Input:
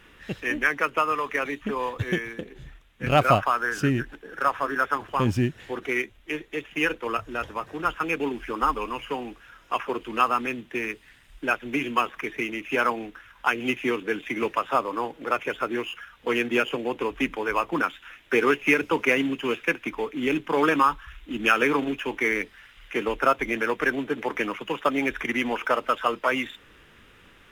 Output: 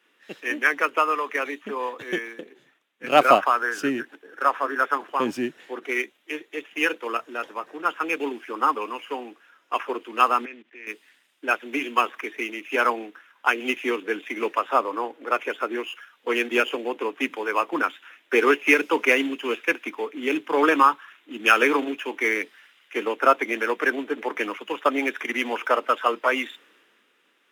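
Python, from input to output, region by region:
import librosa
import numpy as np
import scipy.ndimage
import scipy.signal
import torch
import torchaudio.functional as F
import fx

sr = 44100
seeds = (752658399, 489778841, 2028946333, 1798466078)

y = fx.chain(x, sr, fx.lowpass(hz=5800.0, slope=12),
    fx.level_steps(step_db=21),
    fx.peak_eq(hz=2100.0, db=7.0, octaves=0.99), at=(10.45, 10.87))
y = scipy.signal.sosfilt(scipy.signal.butter(4, 260.0, 'highpass', fs=sr, output='sos'), y)
y = fx.band_widen(y, sr, depth_pct=40)
y = F.gain(torch.from_numpy(y), 1.5).numpy()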